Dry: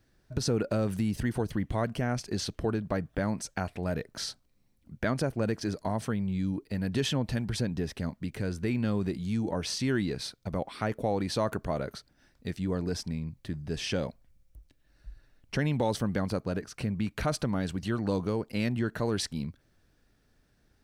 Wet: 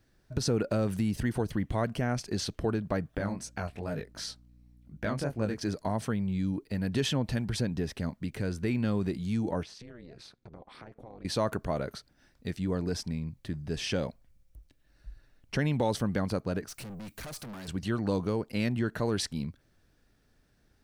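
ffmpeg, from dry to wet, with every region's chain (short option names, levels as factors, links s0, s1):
-filter_complex "[0:a]asettb=1/sr,asplit=3[s0][s1][s2];[s0]atrim=end=3.184[s3];[s1]atrim=start=3.18:end=5.59,asetpts=PTS-STARTPTS,afade=t=in:d=0.004:c=qsin,afade=t=out:st=2.406:d=0.004:c=qsin,flanger=delay=18:depth=4.5:speed=2.7,aeval=exprs='val(0)+0.00158*(sin(2*PI*60*n/s)+sin(2*PI*2*60*n/s)/2+sin(2*PI*3*60*n/s)/3+sin(2*PI*4*60*n/s)/4+sin(2*PI*5*60*n/s)/5)':c=same[s4];[s2]atrim=start=5.586[s5];[s3][s4]acrossfade=d=0.004:c1=hsin:c2=qsin[s6];[s6][s5]acrossfade=d=0.004:c1=qsin:c2=hsin,asettb=1/sr,asplit=3[s7][s8][s9];[s7]atrim=end=9.634[s10];[s8]atrim=start=9.63:end=11.25,asetpts=PTS-STARTPTS,afade=t=in:d=0.004:c=qsin,afade=t=out:st=1.616:d=0.004:c=qsin,lowpass=f=3100:p=1,tremolo=f=240:d=0.947,acompressor=threshold=0.00562:ratio=5:attack=3.2:release=140:knee=1:detection=peak[s11];[s9]atrim=start=11.246[s12];[s10][s11]acrossfade=d=0.004:c1=hsin:c2=qsin[s13];[s13][s12]acrossfade=d=0.004:c1=qsin:c2=hsin,asettb=1/sr,asplit=3[s14][s15][s16];[s14]atrim=end=16.684[s17];[s15]atrim=start=16.68:end=17.68,asetpts=PTS-STARTPTS,afade=t=in:d=0.004:c=qsin,afade=t=out:st=0.996:d=0.004:c=qsin,aemphasis=mode=production:type=75kf,aeval=exprs='(tanh(100*val(0)+0.25)-tanh(0.25))/100':c=same[s18];[s16]atrim=start=17.676[s19];[s17][s18]acrossfade=d=0.004:c1=hsin:c2=qsin[s20];[s20][s19]acrossfade=d=0.004:c1=qsin:c2=hsin"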